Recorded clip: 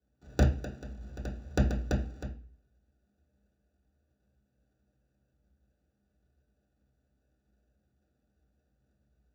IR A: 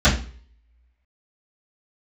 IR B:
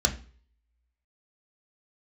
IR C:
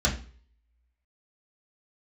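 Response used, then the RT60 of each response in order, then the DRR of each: C; 0.45, 0.45, 0.45 s; -15.0, 2.5, -5.0 dB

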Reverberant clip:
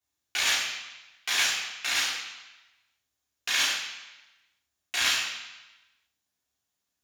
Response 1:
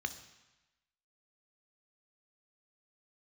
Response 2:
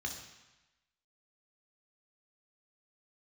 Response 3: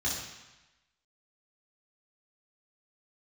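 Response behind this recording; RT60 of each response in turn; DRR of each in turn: 3; 1.0, 1.0, 1.0 s; 9.0, 1.5, -7.0 dB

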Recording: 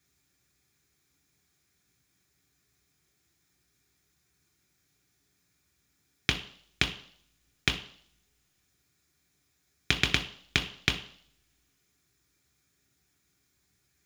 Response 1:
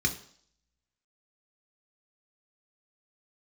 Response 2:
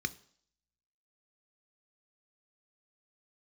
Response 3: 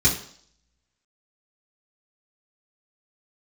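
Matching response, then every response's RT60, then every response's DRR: 1; 0.55, 0.55, 0.55 s; 3.0, 12.0, -6.0 dB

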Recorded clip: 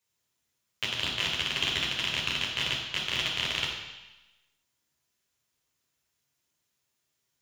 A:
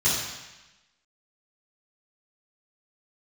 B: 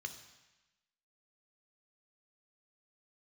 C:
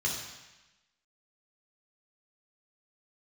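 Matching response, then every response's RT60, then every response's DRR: C; 1.0, 1.0, 1.0 s; -13.0, 6.5, -3.5 dB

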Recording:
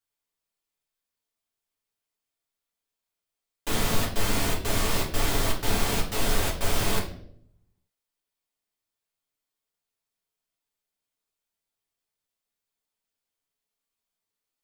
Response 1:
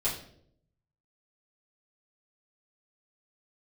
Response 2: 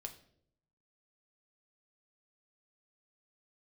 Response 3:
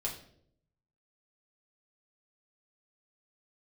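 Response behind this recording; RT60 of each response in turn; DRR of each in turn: 3; 0.65, 0.65, 0.65 s; -9.0, 4.5, -3.0 dB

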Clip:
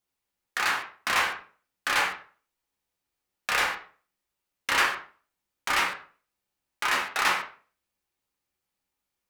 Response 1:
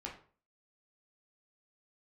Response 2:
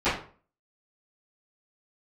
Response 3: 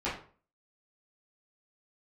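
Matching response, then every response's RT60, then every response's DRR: 1; 0.45, 0.45, 0.45 s; -2.5, -20.0, -11.0 dB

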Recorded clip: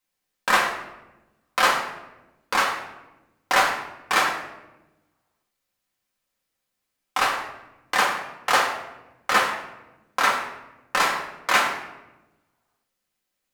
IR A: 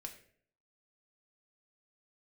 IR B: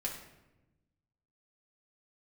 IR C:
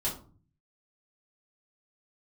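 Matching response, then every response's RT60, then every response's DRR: B; 0.55, 1.0, 0.40 s; 2.5, -2.5, -7.0 dB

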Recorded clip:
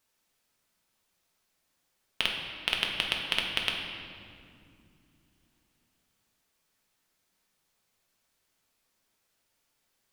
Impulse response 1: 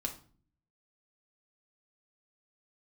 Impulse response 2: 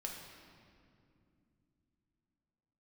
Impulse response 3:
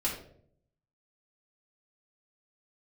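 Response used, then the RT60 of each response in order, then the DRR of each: 2; 0.45, 2.5, 0.60 s; 1.5, -0.5, -6.0 dB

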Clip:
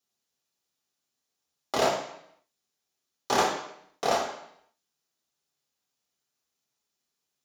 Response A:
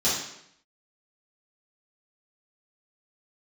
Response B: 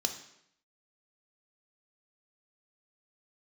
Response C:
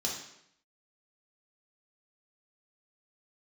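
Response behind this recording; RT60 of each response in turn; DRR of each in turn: C; 0.75, 0.75, 0.75 s; -11.0, 5.0, -3.0 dB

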